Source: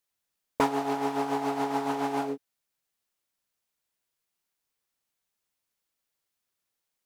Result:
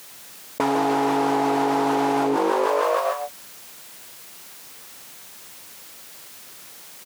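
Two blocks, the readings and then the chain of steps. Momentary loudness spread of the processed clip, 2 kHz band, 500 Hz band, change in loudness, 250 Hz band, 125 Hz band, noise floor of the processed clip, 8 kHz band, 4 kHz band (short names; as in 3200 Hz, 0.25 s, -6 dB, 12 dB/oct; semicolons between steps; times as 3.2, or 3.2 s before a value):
19 LU, +9.0 dB, +10.5 dB, +7.5 dB, +8.0 dB, +6.0 dB, -43 dBFS, +12.0 dB, +9.5 dB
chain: HPF 110 Hz 12 dB/oct; on a send: frequency-shifting echo 0.153 s, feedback 55%, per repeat +51 Hz, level -12 dB; on the sum: fast leveller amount 100%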